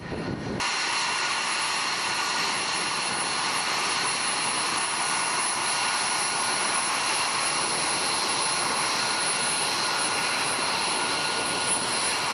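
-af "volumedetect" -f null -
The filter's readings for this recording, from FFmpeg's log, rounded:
mean_volume: -26.5 dB
max_volume: -13.2 dB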